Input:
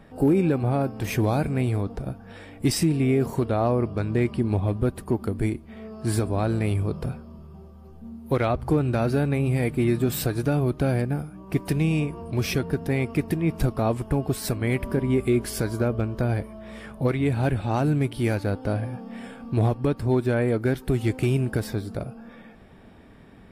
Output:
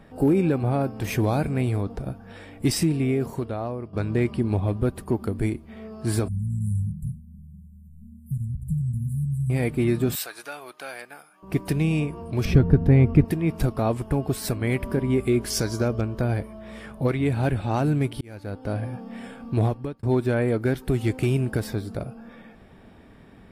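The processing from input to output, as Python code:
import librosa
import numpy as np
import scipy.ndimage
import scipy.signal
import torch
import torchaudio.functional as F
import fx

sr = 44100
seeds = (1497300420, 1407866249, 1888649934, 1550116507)

y = fx.brickwall_bandstop(x, sr, low_hz=220.0, high_hz=7100.0, at=(6.28, 9.5))
y = fx.highpass(y, sr, hz=1100.0, slope=12, at=(10.15, 11.43))
y = fx.riaa(y, sr, side='playback', at=(12.45, 13.25))
y = fx.peak_eq(y, sr, hz=5800.0, db=13.5, octaves=0.67, at=(15.5, 16.01))
y = fx.edit(y, sr, fx.fade_out_to(start_s=2.8, length_s=1.13, floor_db=-13.0),
    fx.fade_in_span(start_s=18.21, length_s=0.66),
    fx.fade_out_span(start_s=19.62, length_s=0.41), tone=tone)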